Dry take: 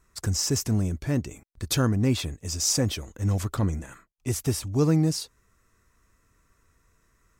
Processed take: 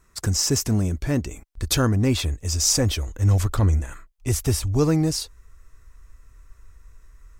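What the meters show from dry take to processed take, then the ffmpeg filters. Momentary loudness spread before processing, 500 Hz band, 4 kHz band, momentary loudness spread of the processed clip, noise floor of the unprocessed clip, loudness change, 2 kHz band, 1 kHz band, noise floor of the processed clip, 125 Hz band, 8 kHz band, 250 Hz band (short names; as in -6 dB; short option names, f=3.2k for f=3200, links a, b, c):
13 LU, +3.5 dB, +4.5 dB, 9 LU, -68 dBFS, +4.0 dB, +4.5 dB, +4.5 dB, -57 dBFS, +4.5 dB, +4.5 dB, +2.0 dB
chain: -af "asubboost=boost=11:cutoff=53,volume=4.5dB"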